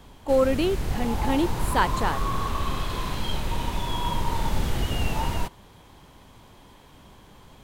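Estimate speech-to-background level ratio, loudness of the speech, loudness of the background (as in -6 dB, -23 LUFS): 4.0 dB, -25.5 LUFS, -29.5 LUFS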